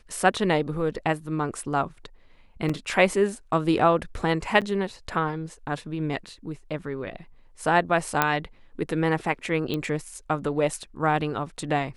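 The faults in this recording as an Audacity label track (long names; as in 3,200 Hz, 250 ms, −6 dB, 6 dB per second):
2.690000	2.690000	drop-out 5 ms
4.610000	4.620000	drop-out 7.6 ms
8.220000	8.220000	click −5 dBFS
9.740000	9.740000	click −16 dBFS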